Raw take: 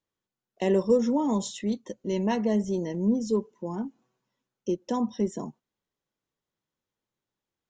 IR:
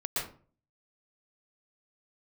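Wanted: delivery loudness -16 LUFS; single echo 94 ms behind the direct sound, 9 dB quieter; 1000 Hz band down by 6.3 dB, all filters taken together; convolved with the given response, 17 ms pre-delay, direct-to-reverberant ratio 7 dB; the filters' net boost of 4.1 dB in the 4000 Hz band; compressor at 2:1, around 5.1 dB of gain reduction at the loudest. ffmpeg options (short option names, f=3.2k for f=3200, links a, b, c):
-filter_complex "[0:a]equalizer=f=1k:t=o:g=-8,equalizer=f=4k:t=o:g=6,acompressor=threshold=-27dB:ratio=2,aecho=1:1:94:0.355,asplit=2[a][b];[1:a]atrim=start_sample=2205,adelay=17[c];[b][c]afir=irnorm=-1:irlink=0,volume=-13dB[d];[a][d]amix=inputs=2:normalize=0,volume=14.5dB"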